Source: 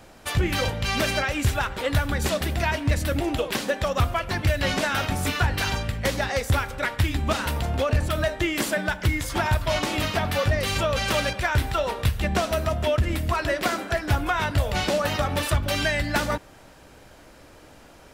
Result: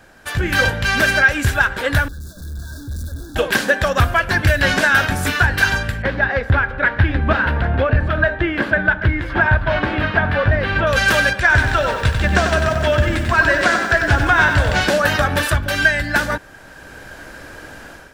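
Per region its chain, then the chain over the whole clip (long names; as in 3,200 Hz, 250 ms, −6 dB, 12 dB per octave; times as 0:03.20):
0:02.08–0:03.36: sign of each sample alone + linear-phase brick-wall band-stop 1,700–3,400 Hz + guitar amp tone stack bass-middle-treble 10-0-1
0:06.02–0:10.87: high-frequency loss of the air 400 metres + single-tap delay 785 ms −15 dB
0:11.40–0:14.81: low-pass filter 8,600 Hz 24 dB per octave + feedback echo at a low word length 94 ms, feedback 55%, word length 8 bits, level −6 dB
whole clip: parametric band 1,600 Hz +14.5 dB 0.24 octaves; automatic gain control; level −1 dB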